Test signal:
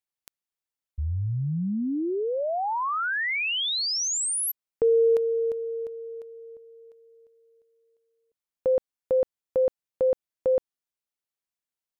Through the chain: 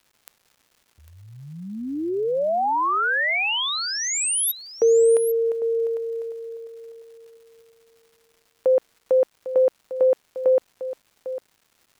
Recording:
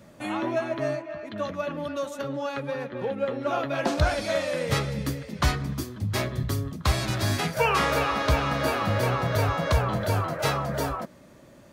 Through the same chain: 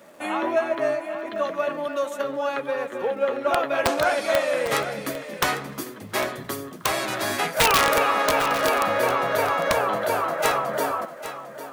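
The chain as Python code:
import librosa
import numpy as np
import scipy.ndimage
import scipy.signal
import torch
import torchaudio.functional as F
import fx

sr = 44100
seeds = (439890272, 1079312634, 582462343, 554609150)

p1 = scipy.signal.sosfilt(scipy.signal.butter(2, 400.0, 'highpass', fs=sr, output='sos'), x)
p2 = fx.peak_eq(p1, sr, hz=4900.0, db=-7.0, octaves=1.2)
p3 = fx.dmg_crackle(p2, sr, seeds[0], per_s=420.0, level_db=-54.0)
p4 = (np.mod(10.0 ** (16.5 / 20.0) * p3 + 1.0, 2.0) - 1.0) / 10.0 ** (16.5 / 20.0)
p5 = p4 + fx.echo_single(p4, sr, ms=801, db=-12.5, dry=0)
y = p5 * librosa.db_to_amplitude(6.0)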